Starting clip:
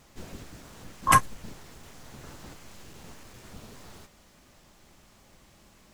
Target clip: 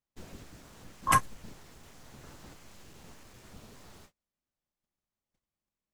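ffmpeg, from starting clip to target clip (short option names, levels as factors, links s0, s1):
-af "agate=range=0.0251:threshold=0.00282:ratio=16:detection=peak,volume=0.562"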